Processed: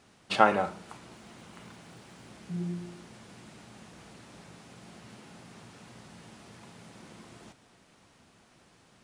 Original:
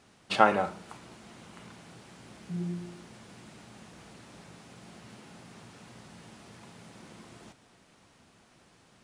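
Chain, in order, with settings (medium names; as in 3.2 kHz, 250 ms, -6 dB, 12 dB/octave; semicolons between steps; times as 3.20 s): 1.12–2.32 s: crackle 300 per s -58 dBFS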